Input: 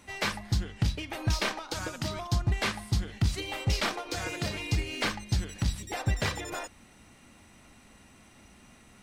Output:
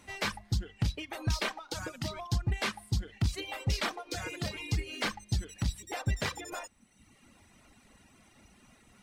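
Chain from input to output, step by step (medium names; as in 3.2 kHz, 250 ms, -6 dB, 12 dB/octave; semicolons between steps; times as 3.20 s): in parallel at -11 dB: one-sided clip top -32 dBFS; on the sum: reverb removal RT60 1.1 s; trim -4 dB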